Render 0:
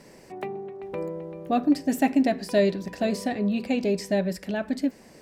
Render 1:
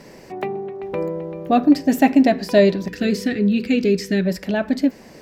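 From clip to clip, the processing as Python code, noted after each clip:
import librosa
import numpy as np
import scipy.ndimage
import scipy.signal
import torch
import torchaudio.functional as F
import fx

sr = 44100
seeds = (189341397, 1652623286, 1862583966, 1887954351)

y = fx.spec_box(x, sr, start_s=2.89, length_s=1.37, low_hz=510.0, high_hz=1200.0, gain_db=-16)
y = fx.peak_eq(y, sr, hz=9100.0, db=-9.0, octaves=0.52)
y = y * 10.0 ** (7.5 / 20.0)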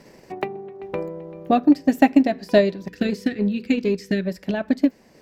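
y = fx.transient(x, sr, attack_db=8, sustain_db=-4)
y = y * 10.0 ** (-6.5 / 20.0)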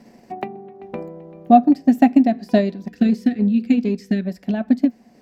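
y = fx.small_body(x, sr, hz=(230.0, 720.0), ring_ms=70, db=14)
y = y * 10.0 ** (-4.5 / 20.0)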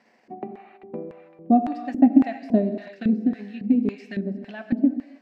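y = fx.rev_gated(x, sr, seeds[0], gate_ms=350, shape='flat', drr_db=7.5)
y = fx.filter_lfo_bandpass(y, sr, shape='square', hz=1.8, low_hz=290.0, high_hz=1800.0, q=0.95)
y = y * 10.0 ** (-2.0 / 20.0)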